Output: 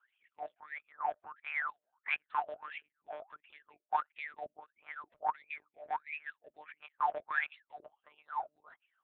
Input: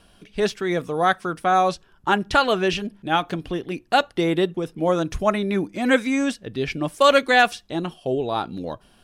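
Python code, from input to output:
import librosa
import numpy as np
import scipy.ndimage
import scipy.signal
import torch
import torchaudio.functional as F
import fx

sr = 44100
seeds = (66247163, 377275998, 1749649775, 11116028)

y = fx.low_shelf(x, sr, hz=440.0, db=-6.0)
y = fx.cheby_harmonics(y, sr, harmonics=(6,), levels_db=(-11,), full_scale_db=-3.5)
y = fx.lpc_monotone(y, sr, seeds[0], pitch_hz=150.0, order=8)
y = fx.wah_lfo(y, sr, hz=1.5, low_hz=600.0, high_hz=2500.0, q=16.0)
y = fx.hpss(y, sr, part='harmonic', gain_db=-17)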